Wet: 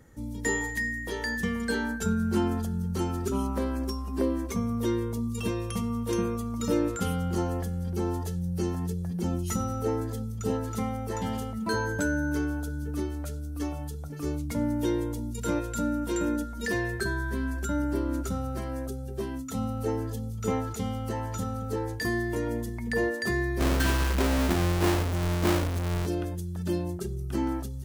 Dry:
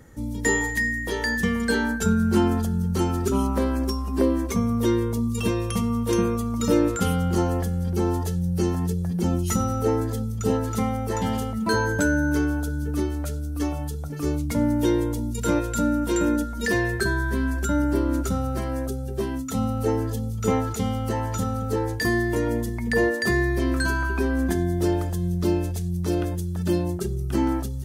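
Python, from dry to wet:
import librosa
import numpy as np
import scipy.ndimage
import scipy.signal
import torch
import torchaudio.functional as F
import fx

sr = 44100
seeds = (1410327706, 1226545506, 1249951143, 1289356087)

y = fx.halfwave_hold(x, sr, at=(23.59, 26.05), fade=0.02)
y = F.gain(torch.from_numpy(y), -6.0).numpy()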